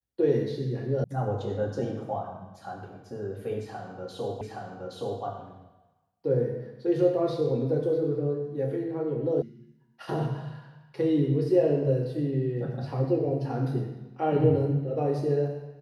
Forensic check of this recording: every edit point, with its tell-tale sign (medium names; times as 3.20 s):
1.04 s: sound stops dead
4.41 s: repeat of the last 0.82 s
9.42 s: sound stops dead